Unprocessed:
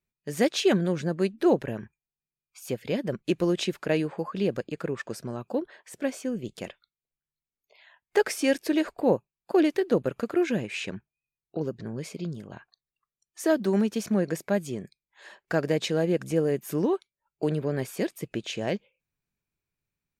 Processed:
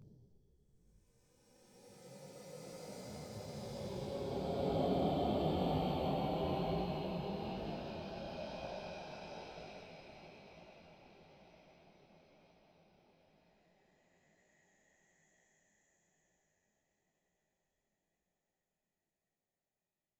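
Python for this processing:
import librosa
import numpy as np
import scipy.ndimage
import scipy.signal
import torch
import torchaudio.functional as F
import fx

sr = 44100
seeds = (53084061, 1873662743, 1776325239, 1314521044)

y = fx.partial_stretch(x, sr, pct=119)
y = fx.lowpass(y, sr, hz=1400.0, slope=6)
y = fx.paulstretch(y, sr, seeds[0], factor=48.0, window_s=0.05, from_s=6.52)
y = fx.echo_diffused(y, sr, ms=802, feedback_pct=66, wet_db=-14)
y = fx.detune_double(y, sr, cents=36)
y = F.gain(torch.from_numpy(y), 7.5).numpy()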